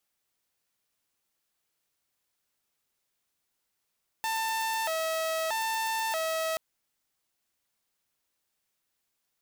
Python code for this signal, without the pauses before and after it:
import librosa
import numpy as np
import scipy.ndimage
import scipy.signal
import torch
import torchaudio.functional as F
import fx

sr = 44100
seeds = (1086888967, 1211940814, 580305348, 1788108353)

y = fx.siren(sr, length_s=2.33, kind='hi-lo', low_hz=644.0, high_hz=892.0, per_s=0.79, wave='saw', level_db=-25.5)